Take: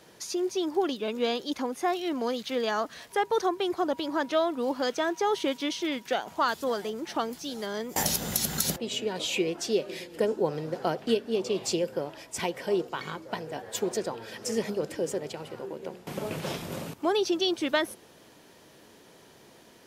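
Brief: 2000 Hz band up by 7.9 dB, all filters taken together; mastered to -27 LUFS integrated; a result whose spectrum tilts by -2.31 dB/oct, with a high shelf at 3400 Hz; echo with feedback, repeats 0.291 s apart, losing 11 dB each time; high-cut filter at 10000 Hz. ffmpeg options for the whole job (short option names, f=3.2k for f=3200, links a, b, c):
-af "lowpass=10k,equalizer=f=2k:t=o:g=8.5,highshelf=f=3.4k:g=5.5,aecho=1:1:291|582|873:0.282|0.0789|0.0221"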